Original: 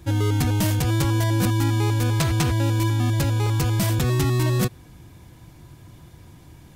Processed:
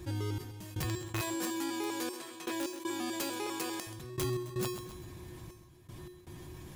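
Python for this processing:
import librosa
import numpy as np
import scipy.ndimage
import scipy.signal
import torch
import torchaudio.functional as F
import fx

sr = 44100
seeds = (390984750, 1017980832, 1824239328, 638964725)

y = fx.highpass(x, sr, hz=280.0, slope=24, at=(1.21, 3.87))
y = fx.rider(y, sr, range_db=3, speed_s=2.0)
y = fx.step_gate(y, sr, bpm=79, pattern='xx..x.xxx', floor_db=-24.0, edge_ms=4.5)
y = (np.mod(10.0 ** (14.5 / 20.0) * y + 1.0, 2.0) - 1.0) / 10.0 ** (14.5 / 20.0)
y = fx.comb_fb(y, sr, f0_hz=360.0, decay_s=0.35, harmonics='odd', damping=0.0, mix_pct=90)
y = fx.echo_feedback(y, sr, ms=131, feedback_pct=33, wet_db=-19.0)
y = fx.env_flatten(y, sr, amount_pct=50)
y = y * 10.0 ** (4.0 / 20.0)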